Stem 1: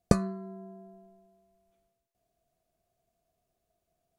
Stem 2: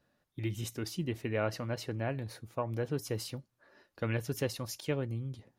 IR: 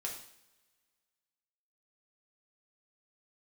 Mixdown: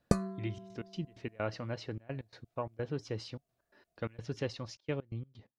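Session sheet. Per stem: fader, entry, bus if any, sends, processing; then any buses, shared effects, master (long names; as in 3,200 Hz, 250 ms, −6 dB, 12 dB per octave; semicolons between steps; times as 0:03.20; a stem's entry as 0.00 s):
−5.0 dB, 0.00 s, no send, no processing
−2.5 dB, 0.00 s, no send, low-pass filter 5,400 Hz 24 dB per octave; gate pattern "xxxxx.x.x.x." 129 BPM −24 dB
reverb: not used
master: no processing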